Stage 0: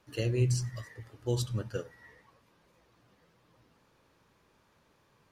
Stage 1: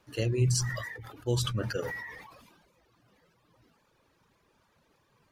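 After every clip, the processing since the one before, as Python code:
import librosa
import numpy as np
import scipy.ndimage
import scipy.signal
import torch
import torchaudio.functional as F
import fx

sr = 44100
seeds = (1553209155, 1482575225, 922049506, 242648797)

y = fx.dereverb_blind(x, sr, rt60_s=1.2)
y = fx.sustainer(y, sr, db_per_s=40.0)
y = y * 10.0 ** (1.5 / 20.0)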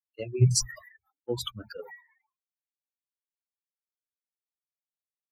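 y = fx.bin_expand(x, sr, power=3.0)
y = fx.band_widen(y, sr, depth_pct=100)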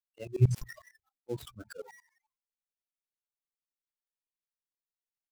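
y = fx.dead_time(x, sr, dead_ms=0.092)
y = fx.tremolo_shape(y, sr, shape='saw_up', hz=11.0, depth_pct=95)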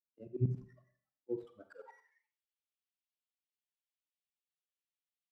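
y = fx.rev_schroeder(x, sr, rt60_s=0.56, comb_ms=32, drr_db=10.0)
y = fx.filter_sweep_bandpass(y, sr, from_hz=240.0, to_hz=3000.0, start_s=1.15, end_s=2.37, q=2.3)
y = y * 10.0 ** (1.0 / 20.0)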